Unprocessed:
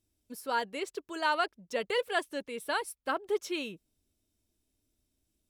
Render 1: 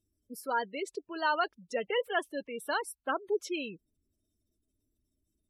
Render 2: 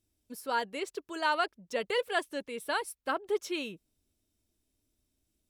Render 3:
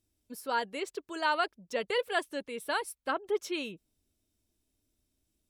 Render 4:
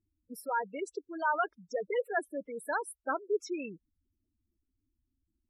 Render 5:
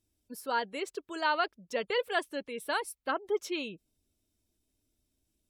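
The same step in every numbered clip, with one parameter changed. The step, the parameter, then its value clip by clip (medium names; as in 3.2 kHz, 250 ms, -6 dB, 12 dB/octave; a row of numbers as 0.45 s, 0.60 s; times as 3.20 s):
spectral gate, under each frame's peak: -20 dB, -60 dB, -45 dB, -10 dB, -35 dB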